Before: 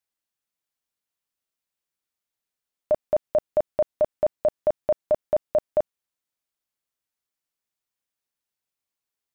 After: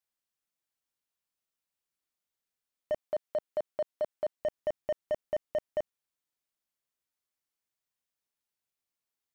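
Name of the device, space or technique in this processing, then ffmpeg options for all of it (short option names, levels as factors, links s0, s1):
clipper into limiter: -filter_complex "[0:a]asettb=1/sr,asplit=3[s0][s1][s2];[s0]atrim=end=2.994[s3];[s1]atrim=start=2.99:end=4.41,asetpts=PTS-STARTPTS,afade=t=in:d=0.004:c=qsin,afade=t=out:st=1.416:d=0.004:c=qsin,highpass=f=300:p=1[s4];[s2]atrim=start=4.406[s5];[s3][s4]acrossfade=d=0.004:c1=hsin:c2=qsin[s6];[s6][s5]acrossfade=d=0.004:c1=qsin:c2=hsin,asoftclip=type=hard:threshold=0.158,alimiter=limit=0.0794:level=0:latency=1:release=34,volume=0.708"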